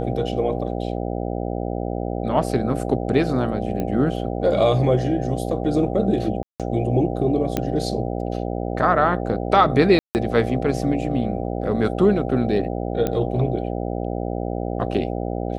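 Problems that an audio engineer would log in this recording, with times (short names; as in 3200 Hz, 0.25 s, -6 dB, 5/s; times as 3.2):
buzz 60 Hz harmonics 13 -26 dBFS
3.8 pop -14 dBFS
6.43–6.6 gap 0.167 s
7.57 pop -8 dBFS
9.99–10.15 gap 0.159 s
13.07 pop -10 dBFS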